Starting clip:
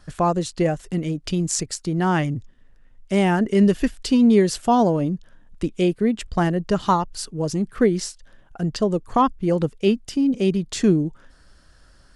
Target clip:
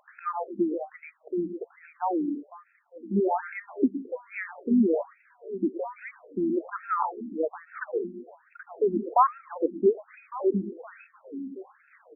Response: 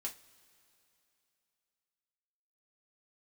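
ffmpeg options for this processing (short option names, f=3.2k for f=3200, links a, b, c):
-filter_complex "[0:a]aecho=1:1:1157|2314|3471|4628:0.141|0.072|0.0367|0.0187,aeval=exprs='val(0)+0.02*(sin(2*PI*50*n/s)+sin(2*PI*2*50*n/s)/2+sin(2*PI*3*50*n/s)/3+sin(2*PI*4*50*n/s)/4+sin(2*PI*5*50*n/s)/5)':c=same,asplit=2[a][b];[1:a]atrim=start_sample=2205,afade=t=out:st=0.24:d=0.01,atrim=end_sample=11025,adelay=114[c];[b][c]afir=irnorm=-1:irlink=0,volume=-8.5dB[d];[a][d]amix=inputs=2:normalize=0,afftfilt=real='re*between(b*sr/1024,260*pow(1900/260,0.5+0.5*sin(2*PI*1.2*pts/sr))/1.41,260*pow(1900/260,0.5+0.5*sin(2*PI*1.2*pts/sr))*1.41)':imag='im*between(b*sr/1024,260*pow(1900/260,0.5+0.5*sin(2*PI*1.2*pts/sr))/1.41,260*pow(1900/260,0.5+0.5*sin(2*PI*1.2*pts/sr))*1.41)':win_size=1024:overlap=0.75"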